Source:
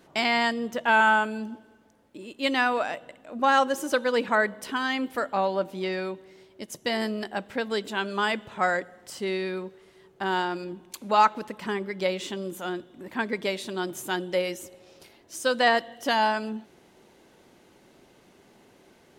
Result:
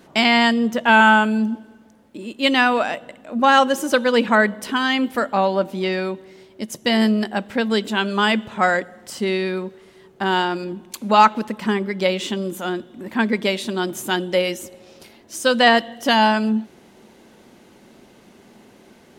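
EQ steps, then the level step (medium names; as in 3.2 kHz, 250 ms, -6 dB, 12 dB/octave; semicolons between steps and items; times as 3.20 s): peaking EQ 220 Hz +8 dB 0.32 oct; dynamic bell 3 kHz, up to +4 dB, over -41 dBFS, Q 2.7; +6.5 dB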